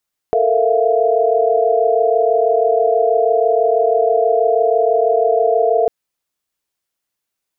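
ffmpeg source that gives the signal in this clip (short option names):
-f lavfi -i "aevalsrc='0.141*(sin(2*PI*440*t)+sin(2*PI*466.16*t)+sin(2*PI*659.26*t)+sin(2*PI*698.46*t))':d=5.55:s=44100"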